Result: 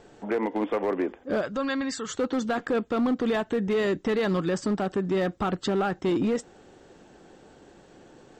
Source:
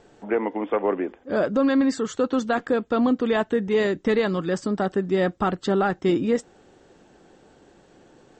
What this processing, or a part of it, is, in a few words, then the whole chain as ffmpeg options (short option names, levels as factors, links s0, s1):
limiter into clipper: -filter_complex "[0:a]asplit=3[s0][s1][s2];[s0]afade=t=out:st=1.4:d=0.02[s3];[s1]equalizer=f=330:t=o:w=2.7:g=-12,afade=t=in:st=1.4:d=0.02,afade=t=out:st=2.07:d=0.02[s4];[s2]afade=t=in:st=2.07:d=0.02[s5];[s3][s4][s5]amix=inputs=3:normalize=0,alimiter=limit=0.119:level=0:latency=1:release=70,asoftclip=type=hard:threshold=0.0841,volume=1.19"